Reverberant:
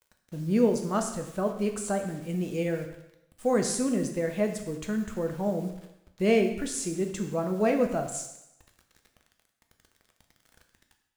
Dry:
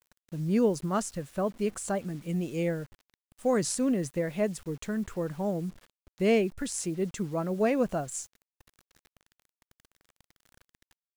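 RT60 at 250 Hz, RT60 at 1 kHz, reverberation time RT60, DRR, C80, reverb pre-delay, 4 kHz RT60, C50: 0.75 s, 0.85 s, 0.85 s, 4.0 dB, 10.5 dB, 3 ms, 0.85 s, 8.0 dB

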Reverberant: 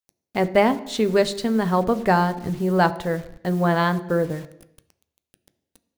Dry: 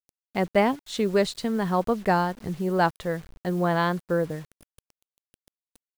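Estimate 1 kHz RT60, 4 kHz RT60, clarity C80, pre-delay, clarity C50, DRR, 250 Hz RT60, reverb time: 0.80 s, 0.85 s, 18.5 dB, 6 ms, 16.5 dB, 11.0 dB, 0.80 s, 0.80 s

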